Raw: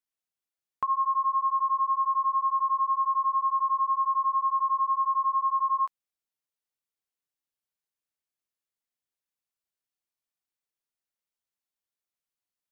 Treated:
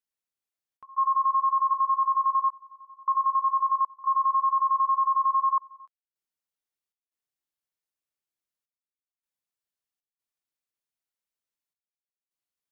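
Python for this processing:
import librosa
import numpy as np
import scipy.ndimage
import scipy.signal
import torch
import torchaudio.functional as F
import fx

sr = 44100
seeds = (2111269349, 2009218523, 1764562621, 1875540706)

y = fx.highpass(x, sr, hz=fx.line((1.73, 900.0), (3.97, 1000.0)), slope=24, at=(1.73, 3.97), fade=0.02)
y = fx.level_steps(y, sr, step_db=9)
y = fx.step_gate(y, sr, bpm=78, pattern='xxxx.xxxxxxxx...', floor_db=-24.0, edge_ms=4.5)
y = F.gain(torch.from_numpy(y), 5.5).numpy()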